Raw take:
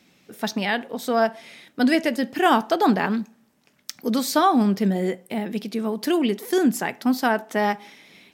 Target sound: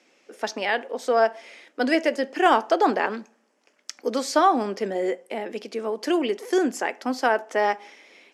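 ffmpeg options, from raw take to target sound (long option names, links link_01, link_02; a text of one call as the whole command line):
ffmpeg -i in.wav -af "highpass=frequency=310:width=0.5412,highpass=frequency=310:width=1.3066,equalizer=frequency=520:width_type=q:width=4:gain=5,equalizer=frequency=3800:width_type=q:width=4:gain=-8,equalizer=frequency=8800:width_type=q:width=4:gain=-6,lowpass=frequency=9300:width=0.5412,lowpass=frequency=9300:width=1.3066,aeval=exprs='0.596*(cos(1*acos(clip(val(0)/0.596,-1,1)))-cos(1*PI/2))+0.0376*(cos(2*acos(clip(val(0)/0.596,-1,1)))-cos(2*PI/2))+0.00841*(cos(4*acos(clip(val(0)/0.596,-1,1)))-cos(4*PI/2))':channel_layout=same" out.wav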